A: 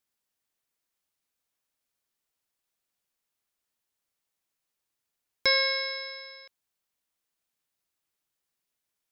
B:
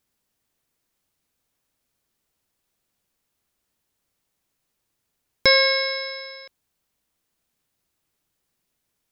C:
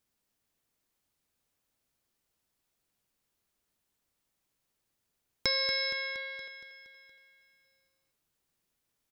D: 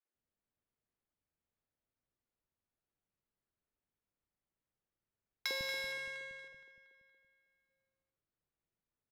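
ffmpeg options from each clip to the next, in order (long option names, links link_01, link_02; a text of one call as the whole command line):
ffmpeg -i in.wav -af "lowshelf=frequency=420:gain=9.5,volume=6.5dB" out.wav
ffmpeg -i in.wav -filter_complex "[0:a]acrossover=split=1700|4100[link_01][link_02][link_03];[link_01]acompressor=threshold=-33dB:ratio=4[link_04];[link_02]acompressor=threshold=-32dB:ratio=4[link_05];[link_03]acompressor=threshold=-26dB:ratio=4[link_06];[link_04][link_05][link_06]amix=inputs=3:normalize=0,asplit=2[link_07][link_08];[link_08]aecho=0:1:234|468|702|936|1170|1404|1638:0.316|0.183|0.106|0.0617|0.0358|0.0208|0.012[link_09];[link_07][link_09]amix=inputs=2:normalize=0,volume=-5dB" out.wav
ffmpeg -i in.wav -filter_complex "[0:a]aresample=11025,aresample=44100,adynamicsmooth=sensitivity=6.5:basefreq=1900,acrossover=split=270|880[link_01][link_02][link_03];[link_02]adelay=50[link_04];[link_01]adelay=150[link_05];[link_05][link_04][link_03]amix=inputs=3:normalize=0,volume=-5.5dB" out.wav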